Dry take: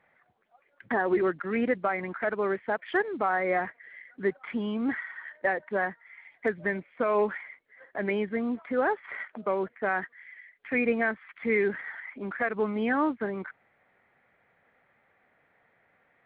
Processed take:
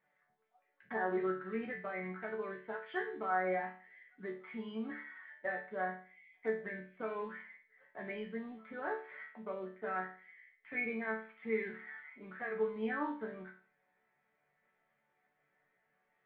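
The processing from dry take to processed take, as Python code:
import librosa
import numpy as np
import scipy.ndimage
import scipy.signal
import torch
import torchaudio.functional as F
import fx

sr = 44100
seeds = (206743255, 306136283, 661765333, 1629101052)

y = fx.spec_box(x, sr, start_s=6.09, length_s=0.24, low_hz=260.0, high_hz=1900.0, gain_db=-27)
y = fx.resonator_bank(y, sr, root=50, chord='major', decay_s=0.41)
y = y * 10.0 ** (5.5 / 20.0)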